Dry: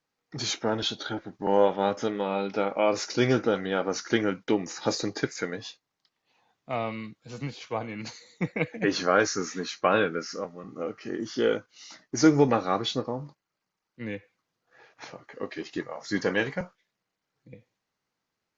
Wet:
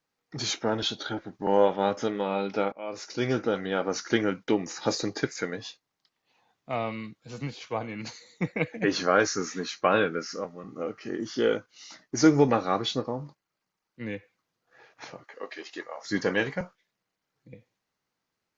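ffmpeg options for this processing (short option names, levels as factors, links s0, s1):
-filter_complex "[0:a]asettb=1/sr,asplit=3[s0][s1][s2];[s0]atrim=end=15.244[s3];[s1]atrim=start=15.24:end=16.05,asetpts=PTS-STARTPTS,afade=t=in:d=0.004:c=qsin,afade=t=out:st=0.806:d=0.004:c=qsin,highpass=500[s4];[s2]atrim=start=16.046[s5];[s3][s4]acrossfade=d=0.004:c1=hsin:c2=qsin[s6];[s6][s5]acrossfade=d=0.004:c1=qsin:c2=hsin,asplit=2[s7][s8];[s7]atrim=end=2.72,asetpts=PTS-STARTPTS,afade=t=out:st=2.716:d=0.004:c=hsin:silence=0.0891251[s9];[s8]atrim=start=2.72,asetpts=PTS-STARTPTS,afade=t=in:d=1.38:c=qsin:silence=0.0891251[s10];[s9][s10]concat=n=2:v=0:a=1"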